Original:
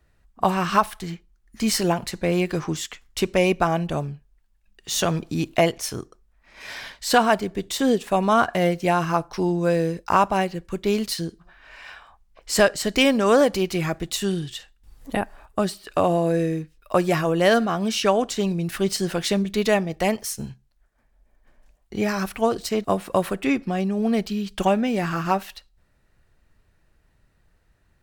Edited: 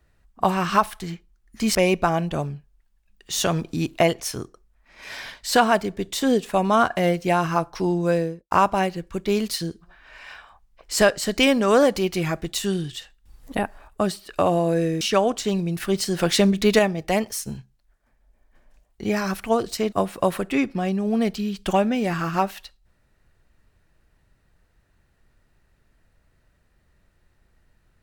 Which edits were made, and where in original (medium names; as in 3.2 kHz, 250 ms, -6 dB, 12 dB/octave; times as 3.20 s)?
1.75–3.33 s: delete
9.68–10.09 s: studio fade out
16.59–17.93 s: delete
19.11–19.71 s: gain +4.5 dB